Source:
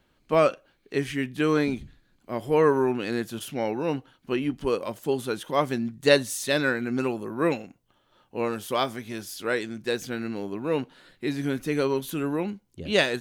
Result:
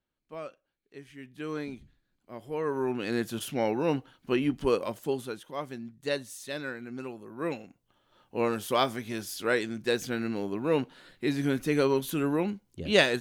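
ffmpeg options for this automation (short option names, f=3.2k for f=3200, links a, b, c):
-af "volume=12dB,afade=t=in:st=1.1:d=0.45:silence=0.398107,afade=t=in:st=2.64:d=0.63:silence=0.251189,afade=t=out:st=4.76:d=0.69:silence=0.251189,afade=t=in:st=7.27:d=1.15:silence=0.251189"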